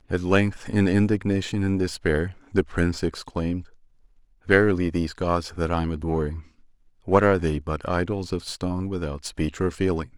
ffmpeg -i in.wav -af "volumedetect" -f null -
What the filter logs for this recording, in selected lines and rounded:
mean_volume: -24.2 dB
max_volume: -1.2 dB